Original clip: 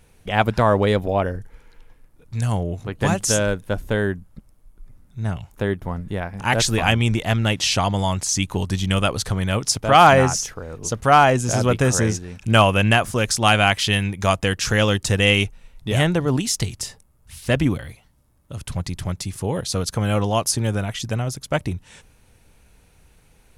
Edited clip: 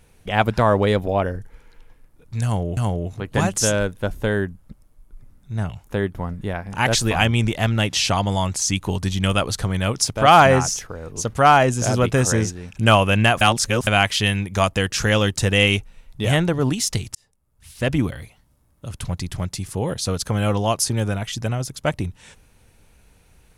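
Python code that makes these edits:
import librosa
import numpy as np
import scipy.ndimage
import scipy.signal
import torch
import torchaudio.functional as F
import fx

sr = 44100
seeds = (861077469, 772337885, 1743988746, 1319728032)

y = fx.edit(x, sr, fx.repeat(start_s=2.44, length_s=0.33, count=2),
    fx.reverse_span(start_s=13.08, length_s=0.46),
    fx.fade_in_span(start_s=16.82, length_s=0.93), tone=tone)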